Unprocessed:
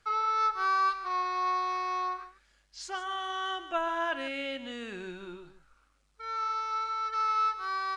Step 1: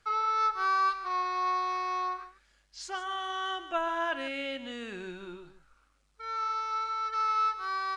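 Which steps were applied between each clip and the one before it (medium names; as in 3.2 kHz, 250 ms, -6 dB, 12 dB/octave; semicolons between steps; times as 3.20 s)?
no audible change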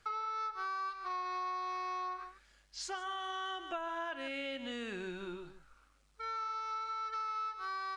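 compression, threshold -38 dBFS, peak gain reduction 13.5 dB; trim +1 dB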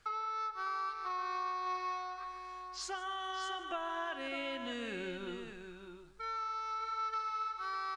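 delay 603 ms -8 dB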